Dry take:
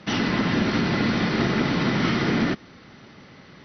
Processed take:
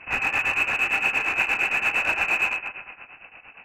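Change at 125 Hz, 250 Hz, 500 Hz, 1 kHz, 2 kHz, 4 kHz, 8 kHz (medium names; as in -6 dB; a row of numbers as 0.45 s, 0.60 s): -21.0 dB, -22.0 dB, -10.0 dB, -0.5 dB, +7.5 dB, -5.0 dB, no reading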